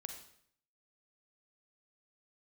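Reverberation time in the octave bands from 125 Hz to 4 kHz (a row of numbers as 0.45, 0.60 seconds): 0.80, 0.70, 0.65, 0.65, 0.60, 0.60 seconds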